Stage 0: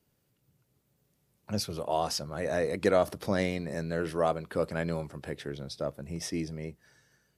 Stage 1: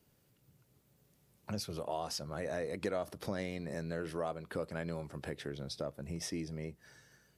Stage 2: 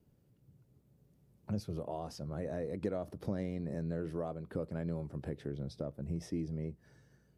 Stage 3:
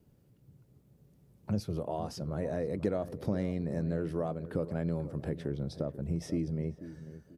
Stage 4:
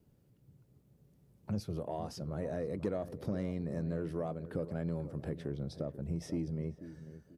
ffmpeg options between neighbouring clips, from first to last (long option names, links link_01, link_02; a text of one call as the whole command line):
ffmpeg -i in.wav -af "acompressor=threshold=-43dB:ratio=2.5,volume=3dB" out.wav
ffmpeg -i in.wav -af "tiltshelf=frequency=690:gain=8.5,volume=-3.5dB" out.wav
ffmpeg -i in.wav -filter_complex "[0:a]asplit=2[link_01][link_02];[link_02]adelay=489,lowpass=frequency=1100:poles=1,volume=-13dB,asplit=2[link_03][link_04];[link_04]adelay=489,lowpass=frequency=1100:poles=1,volume=0.32,asplit=2[link_05][link_06];[link_06]adelay=489,lowpass=frequency=1100:poles=1,volume=0.32[link_07];[link_01][link_03][link_05][link_07]amix=inputs=4:normalize=0,volume=4.5dB" out.wav
ffmpeg -i in.wav -af "asoftclip=type=tanh:threshold=-19.5dB,volume=-3dB" out.wav